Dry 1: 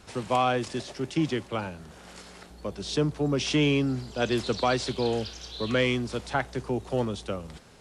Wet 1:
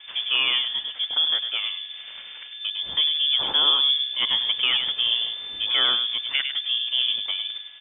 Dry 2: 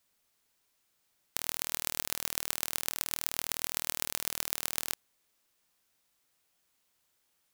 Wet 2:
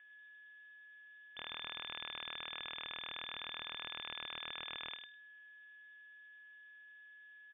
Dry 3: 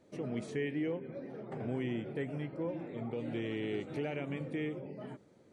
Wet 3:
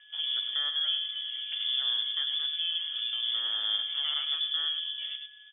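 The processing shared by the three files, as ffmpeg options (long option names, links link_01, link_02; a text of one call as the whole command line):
ffmpeg -i in.wav -filter_complex "[0:a]lowshelf=frequency=140:gain=6.5,asplit=2[link_01][link_02];[link_02]acompressor=threshold=-39dB:ratio=6,volume=0dB[link_03];[link_01][link_03]amix=inputs=2:normalize=0,aeval=exprs='0.596*(abs(mod(val(0)/0.596+3,4)-2)-1)':channel_layout=same,aeval=exprs='val(0)+0.00224*sin(2*PI*1900*n/s)':channel_layout=same,adynamicsmooth=sensitivity=4.5:basefreq=2100,asplit=2[link_04][link_05];[link_05]adelay=102,lowpass=frequency=1100:poles=1,volume=-4dB,asplit=2[link_06][link_07];[link_07]adelay=102,lowpass=frequency=1100:poles=1,volume=0.16,asplit=2[link_08][link_09];[link_09]adelay=102,lowpass=frequency=1100:poles=1,volume=0.16[link_10];[link_04][link_06][link_08][link_10]amix=inputs=4:normalize=0,lowpass=frequency=3100:width_type=q:width=0.5098,lowpass=frequency=3100:width_type=q:width=0.6013,lowpass=frequency=3100:width_type=q:width=0.9,lowpass=frequency=3100:width_type=q:width=2.563,afreqshift=-3600" out.wav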